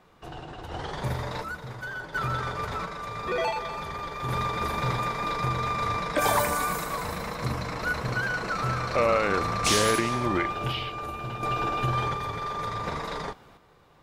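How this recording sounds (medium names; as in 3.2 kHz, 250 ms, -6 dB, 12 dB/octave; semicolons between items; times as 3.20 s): random-step tremolo 1.4 Hz, depth 70%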